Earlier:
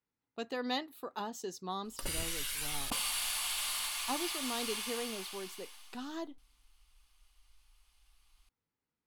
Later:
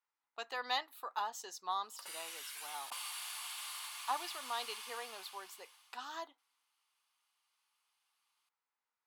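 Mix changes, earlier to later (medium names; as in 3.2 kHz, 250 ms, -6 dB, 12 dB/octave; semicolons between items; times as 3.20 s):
background -9.5 dB; master: add resonant high-pass 940 Hz, resonance Q 1.6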